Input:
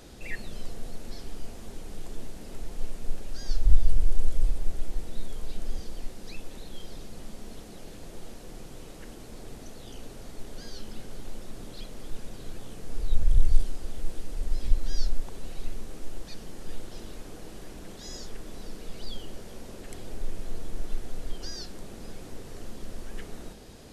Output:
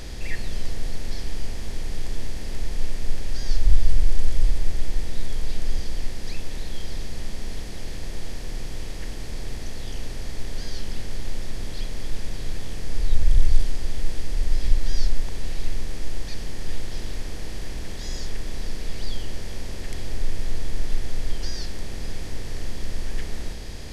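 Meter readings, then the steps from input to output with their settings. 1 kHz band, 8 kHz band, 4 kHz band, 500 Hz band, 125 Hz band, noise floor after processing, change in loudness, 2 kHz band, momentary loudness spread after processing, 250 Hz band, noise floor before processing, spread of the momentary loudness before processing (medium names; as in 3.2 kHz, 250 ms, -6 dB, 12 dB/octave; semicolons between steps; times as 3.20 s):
+5.0 dB, no reading, +8.0 dB, +4.0 dB, +6.0 dB, -31 dBFS, +6.0 dB, +8.5 dB, 9 LU, +4.5 dB, -44 dBFS, 13 LU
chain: spectral levelling over time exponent 0.6; trim +1 dB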